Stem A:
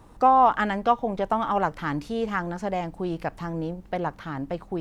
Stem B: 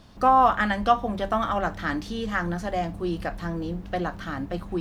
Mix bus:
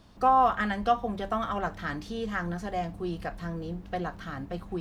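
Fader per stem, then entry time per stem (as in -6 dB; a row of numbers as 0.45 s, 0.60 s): -14.0 dB, -5.5 dB; 0.00 s, 0.00 s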